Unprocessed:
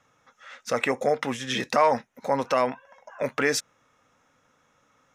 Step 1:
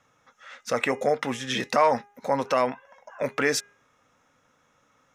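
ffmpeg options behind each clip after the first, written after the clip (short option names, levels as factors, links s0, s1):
-af "bandreject=f=408.2:t=h:w=4,bandreject=f=816.4:t=h:w=4,bandreject=f=1224.6:t=h:w=4,bandreject=f=1632.8:t=h:w=4,bandreject=f=2041:t=h:w=4,bandreject=f=2449.2:t=h:w=4,bandreject=f=2857.4:t=h:w=4"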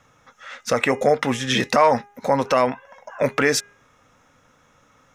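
-filter_complex "[0:a]lowshelf=f=97:g=9.5,asplit=2[s0][s1];[s1]alimiter=limit=0.168:level=0:latency=1:release=361,volume=1.26[s2];[s0][s2]amix=inputs=2:normalize=0"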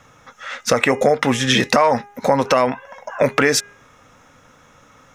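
-af "acompressor=threshold=0.1:ratio=3,volume=2.37"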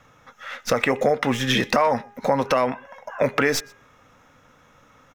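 -filter_complex "[0:a]acrossover=split=870|4900[s0][s1][s2];[s2]aeval=exprs='max(val(0),0)':c=same[s3];[s0][s1][s3]amix=inputs=3:normalize=0,asplit=2[s4][s5];[s5]adelay=122.4,volume=0.0562,highshelf=f=4000:g=-2.76[s6];[s4][s6]amix=inputs=2:normalize=0,volume=0.596"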